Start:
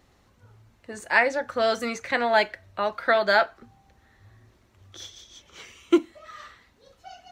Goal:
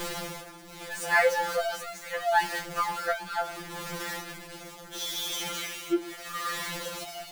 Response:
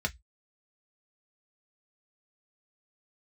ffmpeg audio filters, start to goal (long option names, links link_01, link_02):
-filter_complex "[0:a]aeval=exprs='val(0)+0.5*0.0841*sgn(val(0))':channel_layout=same,tremolo=f=0.75:d=0.66,asplit=2[link_01][link_02];[1:a]atrim=start_sample=2205,adelay=8[link_03];[link_02][link_03]afir=irnorm=-1:irlink=0,volume=-19.5dB[link_04];[link_01][link_04]amix=inputs=2:normalize=0,afftfilt=real='re*2.83*eq(mod(b,8),0)':imag='im*2.83*eq(mod(b,8),0)':win_size=2048:overlap=0.75,volume=-3.5dB"